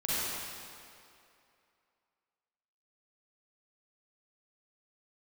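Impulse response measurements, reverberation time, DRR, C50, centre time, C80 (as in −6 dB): 2.6 s, −10.0 dB, −7.5 dB, 193 ms, −4.0 dB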